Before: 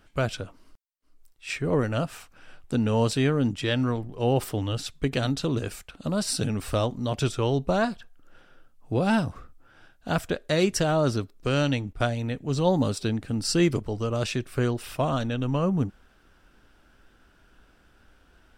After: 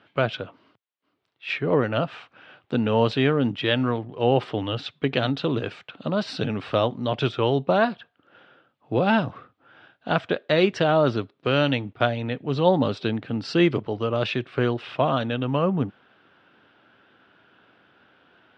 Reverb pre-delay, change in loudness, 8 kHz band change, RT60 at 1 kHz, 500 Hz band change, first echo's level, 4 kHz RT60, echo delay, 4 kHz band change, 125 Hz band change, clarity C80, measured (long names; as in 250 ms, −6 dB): no reverb audible, +2.5 dB, below −15 dB, no reverb audible, +4.0 dB, no echo audible, no reverb audible, no echo audible, +3.0 dB, −0.5 dB, no reverb audible